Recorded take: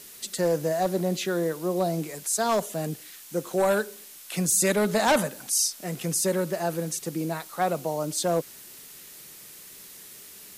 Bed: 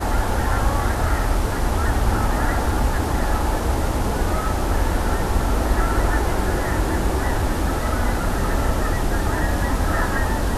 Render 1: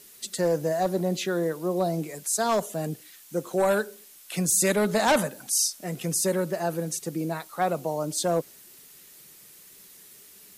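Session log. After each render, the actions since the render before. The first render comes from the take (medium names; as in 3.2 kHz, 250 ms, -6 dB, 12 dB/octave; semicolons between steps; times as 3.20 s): noise reduction 6 dB, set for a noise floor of -46 dBFS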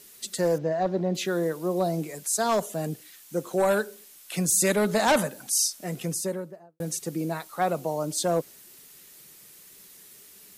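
0.58–1.15 s: distance through air 190 m; 5.91–6.80 s: studio fade out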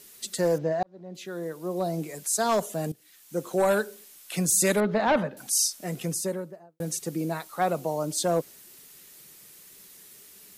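0.83–2.23 s: fade in; 2.92–3.45 s: fade in, from -16.5 dB; 4.80–5.37 s: distance through air 320 m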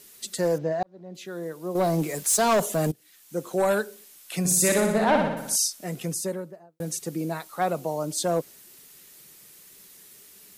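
1.75–2.91 s: waveshaping leveller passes 2; 4.39–5.56 s: flutter echo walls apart 10.4 m, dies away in 0.82 s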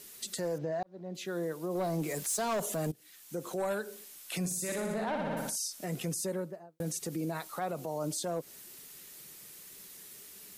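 compression, threshold -27 dBFS, peak gain reduction 10 dB; peak limiter -26.5 dBFS, peak gain reduction 10 dB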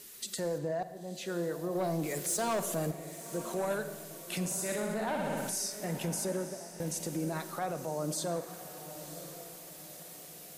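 echo that smears into a reverb 1002 ms, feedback 43%, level -12 dB; Schroeder reverb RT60 1.3 s, combs from 31 ms, DRR 11.5 dB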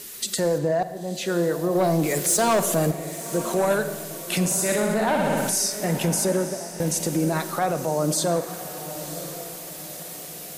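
trim +11.5 dB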